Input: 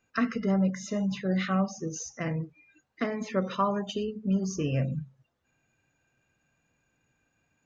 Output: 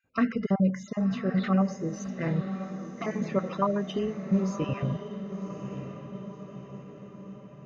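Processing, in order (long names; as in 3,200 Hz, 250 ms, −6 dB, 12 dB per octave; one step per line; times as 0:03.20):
time-frequency cells dropped at random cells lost 21%
high-shelf EQ 3,100 Hz −9 dB
feedback delay with all-pass diffusion 1,078 ms, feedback 55%, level −9 dB
one half of a high-frequency compander decoder only
level +2.5 dB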